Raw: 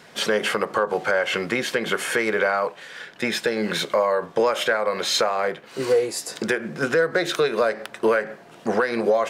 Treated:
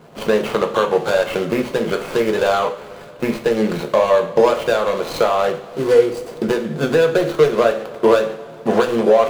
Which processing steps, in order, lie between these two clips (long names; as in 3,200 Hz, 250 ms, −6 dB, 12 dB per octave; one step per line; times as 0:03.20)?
running median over 25 samples
coupled-rooms reverb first 0.4 s, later 2.7 s, from −18 dB, DRR 4 dB
level +6 dB